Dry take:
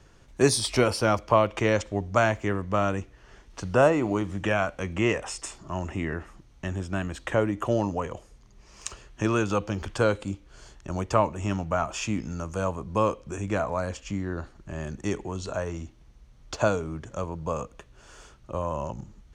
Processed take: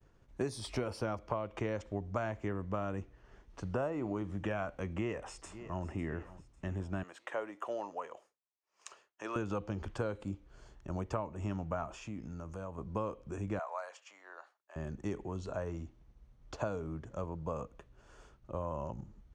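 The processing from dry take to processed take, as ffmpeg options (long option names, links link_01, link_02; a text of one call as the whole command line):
ffmpeg -i in.wav -filter_complex "[0:a]asplit=2[link_01][link_02];[link_02]afade=type=in:start_time=4.91:duration=0.01,afade=type=out:start_time=5.88:duration=0.01,aecho=0:1:550|1100|1650|2200|2750:0.125893|0.0692409|0.0380825|0.0209454|0.01152[link_03];[link_01][link_03]amix=inputs=2:normalize=0,asettb=1/sr,asplit=3[link_04][link_05][link_06];[link_04]atrim=end=7.034[link_07];[link_05]atrim=start=7.03:end=9.36,asetpts=PTS-STARTPTS,afade=type=in:duration=0.004:curve=qsin,afade=type=out:start_time=2.326:duration=0.004:curve=qsin,highpass=630[link_08];[link_06]atrim=start=9.356[link_09];[link_07][link_08]acrossfade=duration=0.004:curve1=hsin:curve2=qsin[link_10];[link_10][link_09]acrossfade=duration=0.004:curve1=qsin:curve2=hsin,asettb=1/sr,asplit=3[link_11][link_12][link_13];[link_11]atrim=end=11.884[link_14];[link_12]atrim=start=11.88:end=12.78,asetpts=PTS-STARTPTS,afade=type=in:duration=0.004:curve=qsin,afade=type=out:start_time=0.896:duration=0.004:curve=qsin,acompressor=threshold=-35dB:ratio=2.5:attack=3.2:release=140:knee=1:detection=peak[link_15];[link_13]atrim=start=12.776[link_16];[link_14][link_15]acrossfade=duration=0.004:curve1=hsin:curve2=qsin[link_17];[link_17][link_16]acrossfade=duration=0.004:curve1=qsin:curve2=hsin,asettb=1/sr,asplit=3[link_18][link_19][link_20];[link_18]atrim=end=13.594[link_21];[link_19]atrim=start=13.59:end=14.76,asetpts=PTS-STARTPTS,afade=type=in:duration=0.004:curve=qsin,afade=type=out:start_time=1.166:duration=0.004:curve=qsin,highpass=frequency=690:width=0.5412,highpass=frequency=690:width=1.3066[link_22];[link_20]atrim=start=14.756[link_23];[link_21][link_22]acrossfade=duration=0.004:curve1=hsin:curve2=qsin[link_24];[link_24][link_23]acrossfade=duration=0.004:curve1=qsin:curve2=hsin,highshelf=frequency=2100:gain=-10.5,agate=range=-33dB:threshold=-51dB:ratio=3:detection=peak,acompressor=threshold=-25dB:ratio=12,volume=-6dB" out.wav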